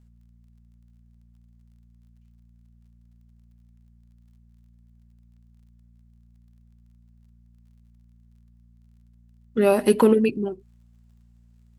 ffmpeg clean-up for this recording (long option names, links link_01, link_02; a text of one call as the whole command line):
ffmpeg -i in.wav -af "adeclick=threshold=4,bandreject=frequency=58.2:width_type=h:width=4,bandreject=frequency=116.4:width_type=h:width=4,bandreject=frequency=174.6:width_type=h:width=4,bandreject=frequency=232.8:width_type=h:width=4" out.wav